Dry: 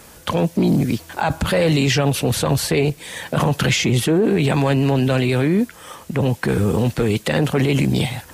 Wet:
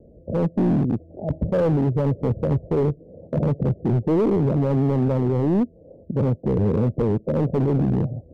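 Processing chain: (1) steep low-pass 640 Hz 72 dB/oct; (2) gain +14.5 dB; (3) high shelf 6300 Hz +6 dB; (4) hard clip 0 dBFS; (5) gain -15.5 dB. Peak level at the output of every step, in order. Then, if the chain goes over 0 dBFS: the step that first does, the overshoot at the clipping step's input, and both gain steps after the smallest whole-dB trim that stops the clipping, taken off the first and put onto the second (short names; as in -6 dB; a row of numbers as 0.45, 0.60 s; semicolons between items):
-7.0, +7.5, +7.5, 0.0, -15.5 dBFS; step 2, 7.5 dB; step 2 +6.5 dB, step 5 -7.5 dB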